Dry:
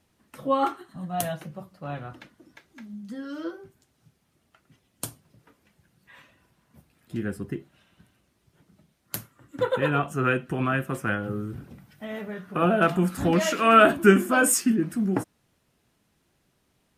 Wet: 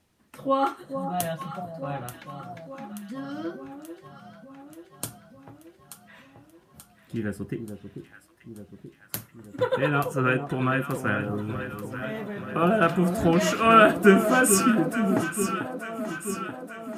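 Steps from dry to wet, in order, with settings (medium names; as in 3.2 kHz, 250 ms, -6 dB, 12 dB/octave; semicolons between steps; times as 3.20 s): 0.68–1.09 s: tone controls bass -1 dB, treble +4 dB; echo whose repeats swap between lows and highs 441 ms, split 980 Hz, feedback 77%, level -8 dB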